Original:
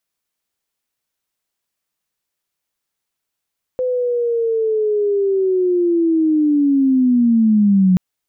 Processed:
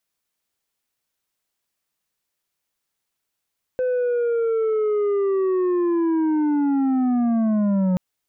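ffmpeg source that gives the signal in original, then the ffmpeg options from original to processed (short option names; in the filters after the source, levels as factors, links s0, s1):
-f lavfi -i "aevalsrc='pow(10,(-16+7*t/4.18)/20)*sin(2*PI*(510*t-330*t*t/(2*4.18)))':d=4.18:s=44100"
-af "asoftclip=type=tanh:threshold=0.126"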